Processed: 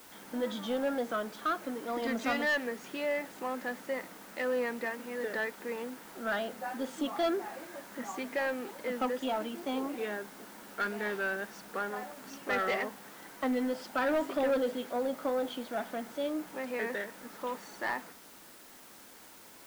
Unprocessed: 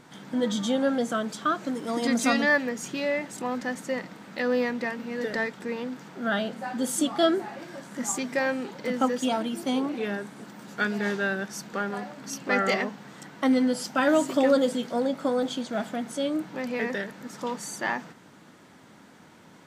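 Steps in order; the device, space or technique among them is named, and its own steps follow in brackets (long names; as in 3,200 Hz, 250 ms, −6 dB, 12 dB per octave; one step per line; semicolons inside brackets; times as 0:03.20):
tape answering machine (band-pass filter 320–2,900 Hz; soft clipping −20.5 dBFS, distortion −14 dB; tape wow and flutter; white noise bed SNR 20 dB)
level −3 dB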